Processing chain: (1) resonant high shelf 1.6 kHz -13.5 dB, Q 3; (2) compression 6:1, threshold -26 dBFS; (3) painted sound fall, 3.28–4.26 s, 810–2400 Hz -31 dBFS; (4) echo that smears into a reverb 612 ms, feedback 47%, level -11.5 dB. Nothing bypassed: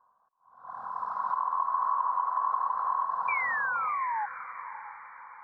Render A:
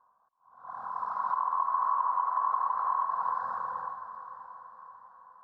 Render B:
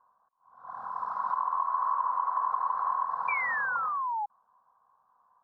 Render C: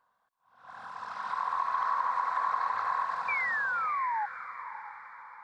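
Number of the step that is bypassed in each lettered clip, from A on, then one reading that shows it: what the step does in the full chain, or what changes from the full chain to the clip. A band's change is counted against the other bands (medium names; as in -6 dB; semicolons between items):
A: 3, momentary loudness spread change +4 LU; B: 4, echo-to-direct -10.5 dB to none; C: 1, momentary loudness spread change +1 LU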